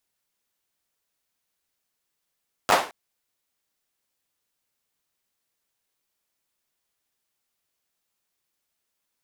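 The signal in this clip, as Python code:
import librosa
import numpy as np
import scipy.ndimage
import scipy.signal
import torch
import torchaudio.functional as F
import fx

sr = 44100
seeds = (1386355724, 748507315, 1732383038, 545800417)

y = fx.drum_clap(sr, seeds[0], length_s=0.22, bursts=4, spacing_ms=10, hz=750.0, decay_s=0.37)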